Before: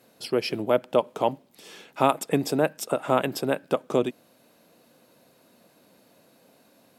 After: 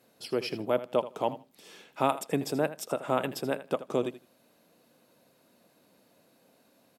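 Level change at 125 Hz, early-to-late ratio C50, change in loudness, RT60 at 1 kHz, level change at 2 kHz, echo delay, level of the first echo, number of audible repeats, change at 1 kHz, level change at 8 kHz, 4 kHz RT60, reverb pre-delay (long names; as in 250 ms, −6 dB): −5.5 dB, no reverb audible, −5.5 dB, no reverb audible, −5.5 dB, 80 ms, −14.5 dB, 2, −5.5 dB, −5.5 dB, no reverb audible, no reverb audible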